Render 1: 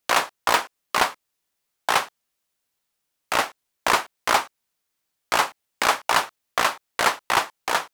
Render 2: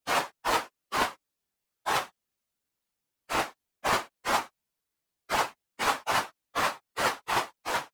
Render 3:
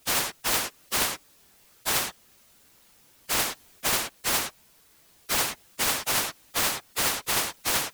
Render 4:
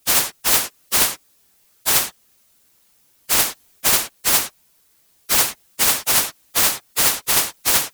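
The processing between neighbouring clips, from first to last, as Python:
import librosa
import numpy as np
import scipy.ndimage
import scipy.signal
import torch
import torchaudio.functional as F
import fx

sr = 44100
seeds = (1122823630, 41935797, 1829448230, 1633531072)

y1 = fx.phase_scramble(x, sr, seeds[0], window_ms=50)
y1 = fx.low_shelf(y1, sr, hz=420.0, db=7.5)
y1 = y1 * 10.0 ** (-7.5 / 20.0)
y2 = fx.rider(y1, sr, range_db=10, speed_s=0.5)
y2 = fx.spectral_comp(y2, sr, ratio=4.0)
y3 = fx.high_shelf(y2, sr, hz=5200.0, db=7.0)
y3 = fx.upward_expand(y3, sr, threshold_db=-40.0, expansion=1.5)
y3 = y3 * 10.0 ** (5.5 / 20.0)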